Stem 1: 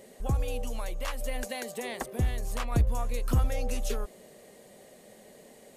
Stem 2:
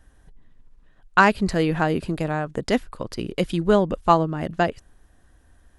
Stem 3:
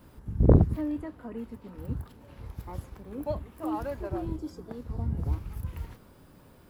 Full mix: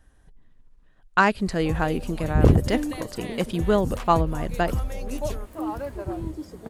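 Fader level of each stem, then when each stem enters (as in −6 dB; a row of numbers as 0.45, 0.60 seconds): −2.5, −3.0, +2.0 decibels; 1.40, 0.00, 1.95 seconds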